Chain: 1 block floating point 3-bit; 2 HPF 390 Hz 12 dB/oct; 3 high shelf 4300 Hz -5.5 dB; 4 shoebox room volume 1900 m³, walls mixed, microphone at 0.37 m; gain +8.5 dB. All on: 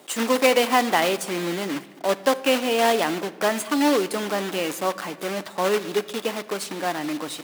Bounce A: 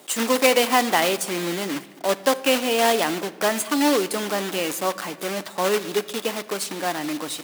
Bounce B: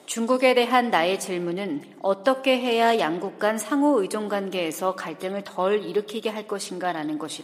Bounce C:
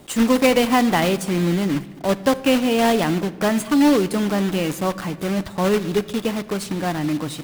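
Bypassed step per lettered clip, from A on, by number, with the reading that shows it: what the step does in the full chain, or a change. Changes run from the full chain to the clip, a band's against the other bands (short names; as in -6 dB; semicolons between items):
3, 8 kHz band +4.0 dB; 1, distortion -12 dB; 2, 125 Hz band +13.5 dB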